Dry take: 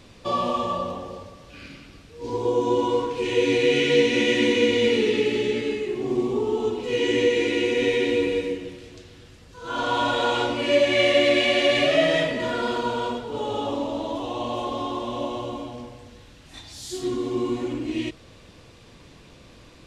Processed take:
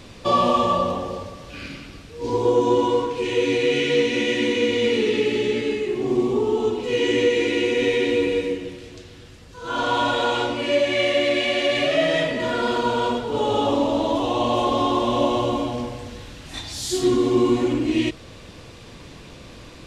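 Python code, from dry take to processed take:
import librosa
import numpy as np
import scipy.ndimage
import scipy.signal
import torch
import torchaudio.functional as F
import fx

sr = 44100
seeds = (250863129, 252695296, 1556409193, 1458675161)

p1 = 10.0 ** (-17.5 / 20.0) * np.tanh(x / 10.0 ** (-17.5 / 20.0))
p2 = x + (p1 * librosa.db_to_amplitude(-11.0))
y = fx.rider(p2, sr, range_db=10, speed_s=2.0)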